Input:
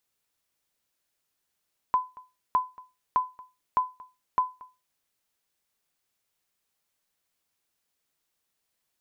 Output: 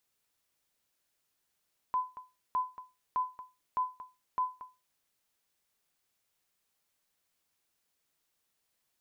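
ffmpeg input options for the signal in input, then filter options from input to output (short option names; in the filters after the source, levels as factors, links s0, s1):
-f lavfi -i "aevalsrc='0.178*(sin(2*PI*1010*mod(t,0.61))*exp(-6.91*mod(t,0.61)/0.26)+0.075*sin(2*PI*1010*max(mod(t,0.61)-0.23,0))*exp(-6.91*max(mod(t,0.61)-0.23,0)/0.26))':d=3.05:s=44100"
-af "alimiter=level_in=1.26:limit=0.0631:level=0:latency=1:release=29,volume=0.794"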